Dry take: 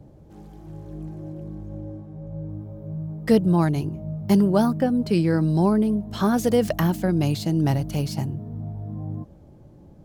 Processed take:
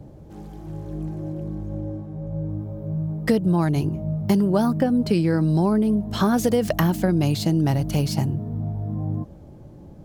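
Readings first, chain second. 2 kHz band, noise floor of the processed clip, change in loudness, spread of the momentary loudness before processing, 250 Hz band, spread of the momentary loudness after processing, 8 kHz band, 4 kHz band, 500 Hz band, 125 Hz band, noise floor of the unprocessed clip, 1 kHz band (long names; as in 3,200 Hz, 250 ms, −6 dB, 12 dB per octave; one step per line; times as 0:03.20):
+2.0 dB, −43 dBFS, −0.5 dB, 17 LU, +0.5 dB, 12 LU, +2.5 dB, +2.5 dB, 0.0 dB, +2.0 dB, −48 dBFS, +0.5 dB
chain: downward compressor 6 to 1, threshold −21 dBFS, peak gain reduction 9 dB
level +5 dB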